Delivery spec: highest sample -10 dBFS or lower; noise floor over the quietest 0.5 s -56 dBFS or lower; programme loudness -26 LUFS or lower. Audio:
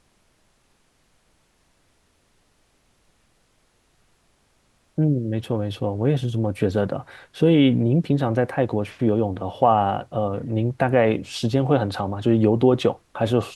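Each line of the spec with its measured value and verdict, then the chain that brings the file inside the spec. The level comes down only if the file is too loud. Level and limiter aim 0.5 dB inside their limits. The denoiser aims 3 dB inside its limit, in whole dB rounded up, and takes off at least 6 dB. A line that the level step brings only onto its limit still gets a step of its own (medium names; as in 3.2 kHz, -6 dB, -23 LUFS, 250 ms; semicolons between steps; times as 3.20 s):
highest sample -5.0 dBFS: fail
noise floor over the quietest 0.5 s -64 dBFS: pass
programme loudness -22.0 LUFS: fail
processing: trim -4.5 dB; peak limiter -10.5 dBFS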